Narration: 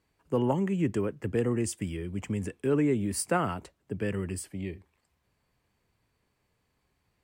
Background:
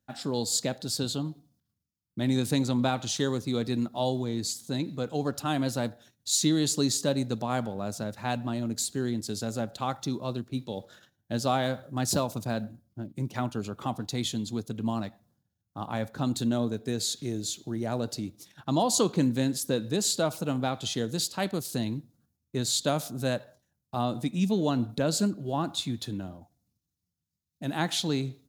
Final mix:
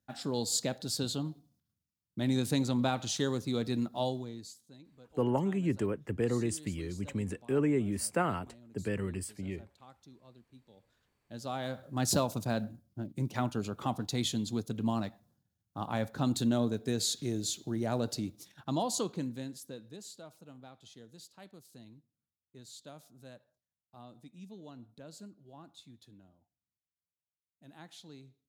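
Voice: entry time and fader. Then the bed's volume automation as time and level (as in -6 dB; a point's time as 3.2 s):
4.85 s, -3.0 dB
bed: 4.02 s -3.5 dB
4.77 s -25 dB
10.79 s -25 dB
12.04 s -1.5 dB
18.34 s -1.5 dB
20.23 s -23 dB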